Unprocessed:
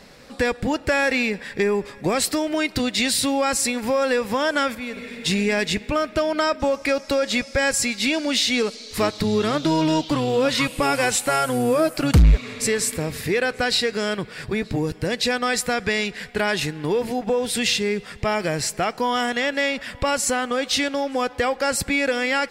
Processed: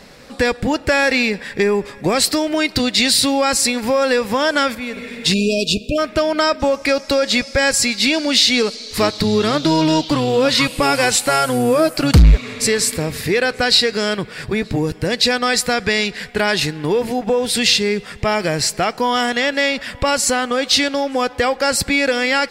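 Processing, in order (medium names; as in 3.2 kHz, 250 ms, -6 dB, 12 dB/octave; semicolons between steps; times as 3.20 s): spectral selection erased 5.34–5.99 s, 710–2400 Hz; dynamic bell 4.5 kHz, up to +6 dB, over -41 dBFS, Q 2.5; trim +4.5 dB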